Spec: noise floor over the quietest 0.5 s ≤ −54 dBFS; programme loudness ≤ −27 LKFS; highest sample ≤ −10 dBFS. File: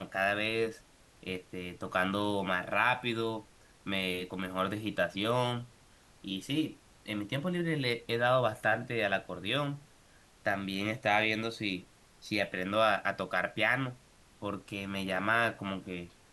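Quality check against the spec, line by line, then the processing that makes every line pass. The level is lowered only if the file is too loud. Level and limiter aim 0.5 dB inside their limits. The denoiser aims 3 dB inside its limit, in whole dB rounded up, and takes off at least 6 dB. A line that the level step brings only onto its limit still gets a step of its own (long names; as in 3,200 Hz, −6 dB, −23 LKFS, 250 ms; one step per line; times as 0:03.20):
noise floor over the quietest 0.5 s −61 dBFS: in spec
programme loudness −32.0 LKFS: in spec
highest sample −12.0 dBFS: in spec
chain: no processing needed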